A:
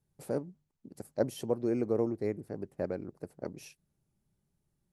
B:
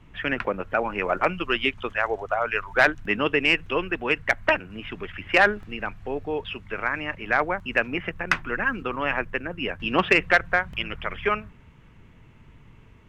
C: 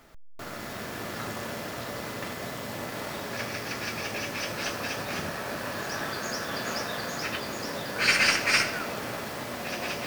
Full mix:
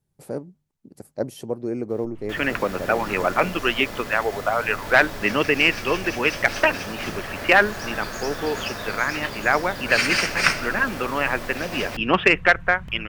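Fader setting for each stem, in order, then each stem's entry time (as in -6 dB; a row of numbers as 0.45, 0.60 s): +3.0, +2.5, +0.5 dB; 0.00, 2.15, 1.90 s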